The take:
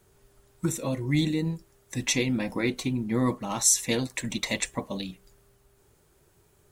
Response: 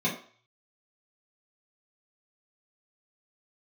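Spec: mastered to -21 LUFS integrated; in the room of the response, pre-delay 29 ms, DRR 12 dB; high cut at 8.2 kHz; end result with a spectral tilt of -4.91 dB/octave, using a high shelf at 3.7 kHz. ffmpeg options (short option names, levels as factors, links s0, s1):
-filter_complex "[0:a]lowpass=8200,highshelf=f=3700:g=-6.5,asplit=2[s0][s1];[1:a]atrim=start_sample=2205,adelay=29[s2];[s1][s2]afir=irnorm=-1:irlink=0,volume=0.0794[s3];[s0][s3]amix=inputs=2:normalize=0,volume=2.37"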